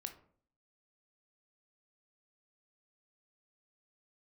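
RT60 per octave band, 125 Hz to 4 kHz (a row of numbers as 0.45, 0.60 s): 0.70, 0.65, 0.55, 0.50, 0.40, 0.25 s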